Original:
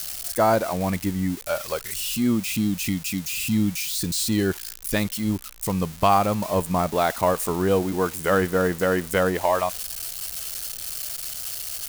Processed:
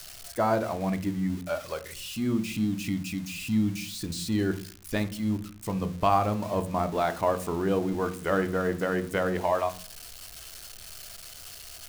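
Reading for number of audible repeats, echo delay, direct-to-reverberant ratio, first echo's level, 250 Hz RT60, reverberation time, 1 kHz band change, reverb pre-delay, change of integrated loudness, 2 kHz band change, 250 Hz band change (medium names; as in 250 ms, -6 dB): no echo, no echo, 10.0 dB, no echo, 0.60 s, 0.45 s, -5.0 dB, 3 ms, -5.0 dB, -6.0 dB, -4.0 dB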